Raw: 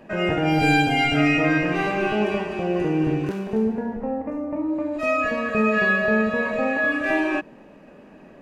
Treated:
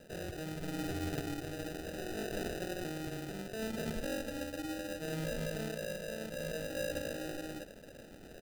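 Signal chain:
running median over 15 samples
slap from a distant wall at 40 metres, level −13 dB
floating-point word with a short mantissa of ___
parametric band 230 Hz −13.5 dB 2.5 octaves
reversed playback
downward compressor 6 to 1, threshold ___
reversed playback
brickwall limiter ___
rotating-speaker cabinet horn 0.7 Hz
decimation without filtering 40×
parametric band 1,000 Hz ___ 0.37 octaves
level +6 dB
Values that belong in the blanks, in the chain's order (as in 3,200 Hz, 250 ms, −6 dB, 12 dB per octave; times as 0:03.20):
2 bits, −38 dBFS, −32 dBFS, −13 dB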